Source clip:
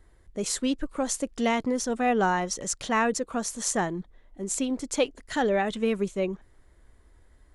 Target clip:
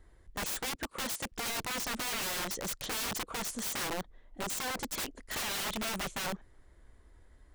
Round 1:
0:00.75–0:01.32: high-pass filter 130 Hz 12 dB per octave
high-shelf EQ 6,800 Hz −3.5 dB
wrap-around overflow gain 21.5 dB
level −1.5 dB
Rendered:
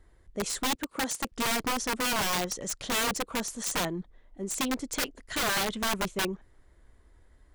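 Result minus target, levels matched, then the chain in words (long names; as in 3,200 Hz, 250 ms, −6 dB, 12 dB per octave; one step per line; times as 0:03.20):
wrap-around overflow: distortion −9 dB
0:00.75–0:01.32: high-pass filter 130 Hz 12 dB per octave
high-shelf EQ 6,800 Hz −3.5 dB
wrap-around overflow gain 28.5 dB
level −1.5 dB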